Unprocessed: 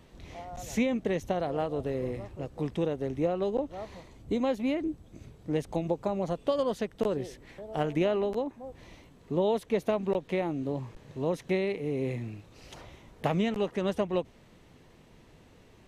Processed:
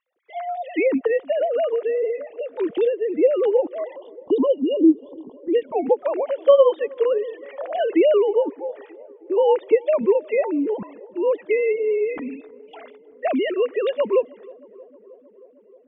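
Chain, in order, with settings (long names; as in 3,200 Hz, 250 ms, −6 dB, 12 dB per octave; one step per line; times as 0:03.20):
three sine waves on the formant tracks
noise gate −58 dBFS, range −26 dB
in parallel at −1.5 dB: downward compressor, threshold −40 dBFS, peak gain reduction 20 dB
on the sum: time-frequency box erased 0:03.95–0:05.37, 1,100–2,800 Hz
feedback echo with a low-pass in the loop 313 ms, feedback 80%, low-pass 1,400 Hz, level −24 dB
level +8.5 dB
AAC 96 kbit/s 22,050 Hz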